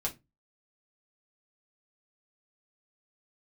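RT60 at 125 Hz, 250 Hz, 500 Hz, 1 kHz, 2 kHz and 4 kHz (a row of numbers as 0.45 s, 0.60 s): 0.35 s, 0.30 s, 0.25 s, 0.20 s, 0.20 s, 0.15 s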